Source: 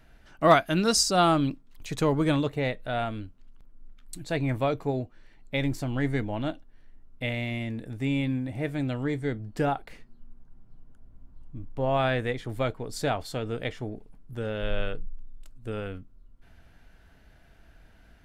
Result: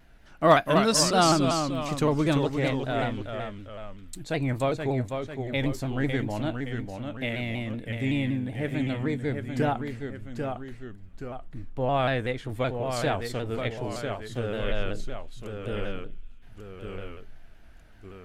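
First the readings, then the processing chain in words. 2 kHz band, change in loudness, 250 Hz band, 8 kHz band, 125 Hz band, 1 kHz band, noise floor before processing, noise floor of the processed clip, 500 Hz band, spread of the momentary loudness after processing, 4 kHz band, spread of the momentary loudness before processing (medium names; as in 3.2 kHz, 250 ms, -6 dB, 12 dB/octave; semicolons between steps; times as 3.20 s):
+1.0 dB, +0.5 dB, +1.0 dB, +1.5 dB, +1.5 dB, +1.0 dB, -56 dBFS, -48 dBFS, +1.5 dB, 20 LU, +1.0 dB, 19 LU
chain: feedback echo behind a high-pass 293 ms, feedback 63%, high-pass 2.2 kHz, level -24 dB; ever faster or slower copies 222 ms, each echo -1 st, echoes 2, each echo -6 dB; vibrato with a chosen wave saw down 5.3 Hz, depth 100 cents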